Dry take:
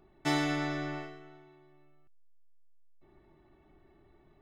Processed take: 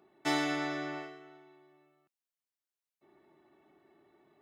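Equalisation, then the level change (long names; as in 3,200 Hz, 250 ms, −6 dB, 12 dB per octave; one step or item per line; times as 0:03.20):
high-pass filter 250 Hz 12 dB per octave
0.0 dB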